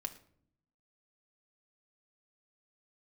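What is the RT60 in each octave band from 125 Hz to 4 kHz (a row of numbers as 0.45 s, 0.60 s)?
1.1 s, 1.0 s, 0.70 s, 0.50 s, 0.45 s, 0.40 s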